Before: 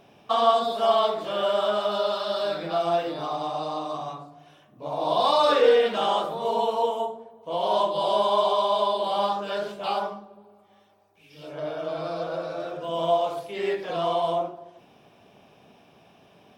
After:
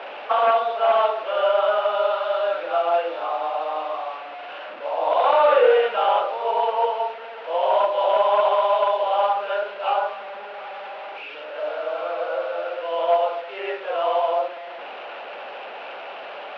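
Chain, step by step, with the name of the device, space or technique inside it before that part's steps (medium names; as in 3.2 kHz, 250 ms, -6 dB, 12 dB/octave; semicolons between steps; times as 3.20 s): digital answering machine (band-pass 310–3100 Hz; one-bit delta coder 32 kbps, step -33 dBFS; cabinet simulation 480–3300 Hz, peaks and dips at 540 Hz +10 dB, 840 Hz +6 dB, 1.4 kHz +8 dB, 2.7 kHz +7 dB)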